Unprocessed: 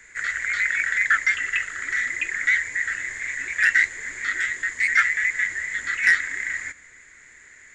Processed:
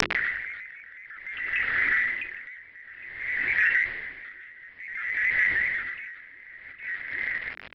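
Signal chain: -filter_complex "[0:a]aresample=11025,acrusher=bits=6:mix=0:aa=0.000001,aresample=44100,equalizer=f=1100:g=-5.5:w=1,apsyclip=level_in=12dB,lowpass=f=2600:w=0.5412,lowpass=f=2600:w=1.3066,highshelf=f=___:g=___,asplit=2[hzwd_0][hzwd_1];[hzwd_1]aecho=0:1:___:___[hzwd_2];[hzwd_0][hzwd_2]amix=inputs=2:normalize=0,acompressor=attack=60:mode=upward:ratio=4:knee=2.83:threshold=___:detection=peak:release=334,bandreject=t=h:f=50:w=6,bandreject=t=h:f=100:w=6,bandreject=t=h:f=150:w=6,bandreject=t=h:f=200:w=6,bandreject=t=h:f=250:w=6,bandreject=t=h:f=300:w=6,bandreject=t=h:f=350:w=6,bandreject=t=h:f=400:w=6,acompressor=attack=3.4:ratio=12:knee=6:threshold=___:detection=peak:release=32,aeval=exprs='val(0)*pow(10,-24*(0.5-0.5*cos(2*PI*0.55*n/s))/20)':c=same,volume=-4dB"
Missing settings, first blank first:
2000, 5, 809, 0.211, -22dB, -15dB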